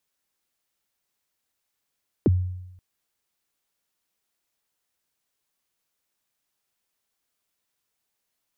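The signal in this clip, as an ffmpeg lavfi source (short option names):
-f lavfi -i "aevalsrc='0.224*pow(10,-3*t/0.91)*sin(2*PI*(460*0.028/log(91/460)*(exp(log(91/460)*min(t,0.028)/0.028)-1)+91*max(t-0.028,0)))':d=0.53:s=44100"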